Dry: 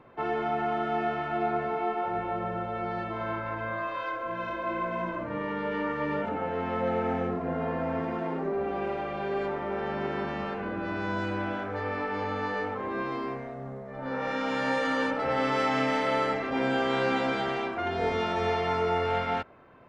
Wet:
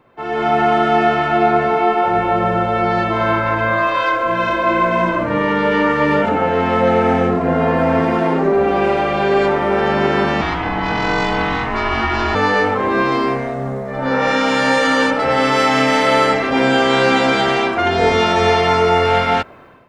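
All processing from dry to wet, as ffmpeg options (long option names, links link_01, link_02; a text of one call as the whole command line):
ffmpeg -i in.wav -filter_complex "[0:a]asettb=1/sr,asplit=3[link_01][link_02][link_03];[link_01]atrim=end=10.414[link_04];[link_02]atrim=start=10.41:end=12.35,asetpts=PTS-STARTPTS,afade=type=in:duration=0.004:curve=qsin,afade=type=out:start_time=1.936:duration=0.004:curve=qsin,highshelf=frequency=4600:gain=7.5,aeval=exprs='val(0)*sin(2*PI*520*n/s)':channel_layout=same,lowpass=6100[link_05];[link_03]atrim=start=12.346[link_06];[link_04][link_05]acrossfade=duration=0.004:curve1=hsin:curve2=qsin[link_07];[link_07][link_06]acrossfade=duration=0.004:curve1=qsin:curve2=hsin,highshelf=frequency=4300:gain=10,dynaudnorm=framelen=150:gausssize=5:maxgain=16dB" out.wav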